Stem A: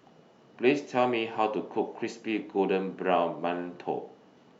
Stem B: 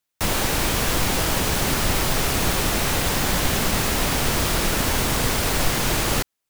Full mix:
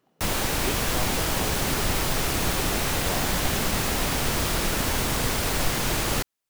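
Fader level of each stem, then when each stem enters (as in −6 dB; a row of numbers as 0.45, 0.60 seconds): −11.0, −3.5 decibels; 0.00, 0.00 seconds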